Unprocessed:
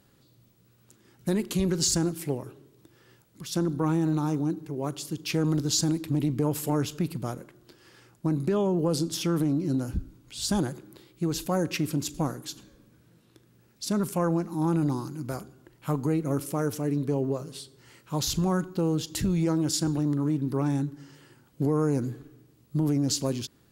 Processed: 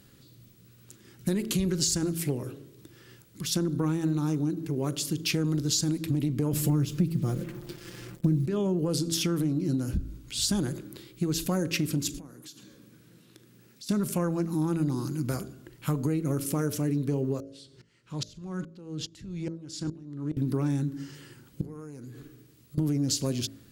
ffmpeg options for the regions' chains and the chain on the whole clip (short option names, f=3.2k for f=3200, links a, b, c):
-filter_complex "[0:a]asettb=1/sr,asplit=3[a][b][c];[a]atrim=end=6.534[d];[b]atrim=start=6.53:end=8.46,asetpts=PTS-STARTPTS,afade=t=in:d=0.004:c=qsin,afade=t=out:st=1.926:d=0.004:c=qsin,lowshelf=f=430:g=11,acrusher=bits=7:mix=0:aa=0.5,aecho=1:1:5.8:0.5,atrim=end_sample=85113[e];[c]atrim=start=8.456[f];[d][e]acrossfade=d=0.004:c1=hsin:c2=qsin[g];[g][f]acrossfade=d=0.004:c1=qsin:c2=hsin,asettb=1/sr,asplit=3[h][i][j];[h]atrim=end=12.184[k];[i]atrim=start=12.18:end=13.89,asetpts=PTS-STARTPTS,afade=t=in:d=0.004:c=qsin,afade=t=out:st=1.706:d=0.004:c=qsin,highpass=140,acompressor=threshold=-52dB:ratio=4:attack=3.2:release=140:knee=1:detection=peak[l];[j]atrim=start=13.886[m];[k][l]acrossfade=d=0.004:c1=hsin:c2=qsin[n];[n][m]acrossfade=d=0.004:c1=qsin:c2=hsin,asettb=1/sr,asplit=3[o][p][q];[o]atrim=end=17.404[r];[p]atrim=start=17.4:end=20.37,asetpts=PTS-STARTPTS,afade=t=in:d=0.004:c=qsin,afade=t=out:st=2.966:d=0.004:c=qsin,acompressor=threshold=-36dB:ratio=2:attack=3.2:release=140:knee=1:detection=peak,lowpass=6.6k,aeval=exprs='val(0)*pow(10,-26*if(lt(mod(-2.4*n/s,1),2*abs(-2.4)/1000),1-mod(-2.4*n/s,1)/(2*abs(-2.4)/1000),(mod(-2.4*n/s,1)-2*abs(-2.4)/1000)/(1-2*abs(-2.4)/1000))/20)':c=same[s];[q]atrim=start=20.366[t];[r][s]acrossfade=d=0.004:c1=hsin:c2=qsin[u];[u][t]acrossfade=d=0.004:c1=qsin:c2=hsin,asettb=1/sr,asplit=3[v][w][x];[v]atrim=end=21.614[y];[w]atrim=start=21.61:end=22.78,asetpts=PTS-STARTPTS,afade=t=in:d=0.004:c=qsin,afade=t=out:st=1.166:d=0.004:c=qsin,acompressor=threshold=-40dB:ratio=10:attack=3.2:release=140:knee=1:detection=peak,lowshelf=f=470:g=-6[z];[x]atrim=start=22.776[aa];[y][z]acrossfade=d=0.004:c1=hsin:c2=qsin[ab];[ab][aa]acrossfade=d=0.004:c1=qsin:c2=hsin,equalizer=f=810:t=o:w=1.3:g=-8.5,bandreject=f=55.08:t=h:w=4,bandreject=f=110.16:t=h:w=4,bandreject=f=165.24:t=h:w=4,bandreject=f=220.32:t=h:w=4,bandreject=f=275.4:t=h:w=4,bandreject=f=330.48:t=h:w=4,bandreject=f=385.56:t=h:w=4,bandreject=f=440.64:t=h:w=4,bandreject=f=495.72:t=h:w=4,bandreject=f=550.8:t=h:w=4,bandreject=f=605.88:t=h:w=4,bandreject=f=660.96:t=h:w=4,acompressor=threshold=-32dB:ratio=4,volume=7dB"